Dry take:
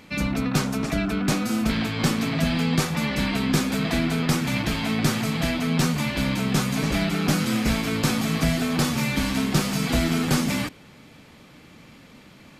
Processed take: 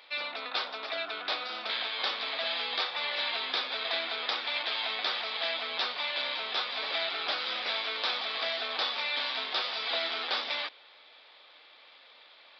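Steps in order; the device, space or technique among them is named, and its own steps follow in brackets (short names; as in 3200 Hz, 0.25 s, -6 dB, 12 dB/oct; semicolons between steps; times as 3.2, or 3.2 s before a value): musical greeting card (downsampling 11025 Hz; HPF 560 Hz 24 dB/oct; bell 3600 Hz +11 dB 0.31 oct); gain -4.5 dB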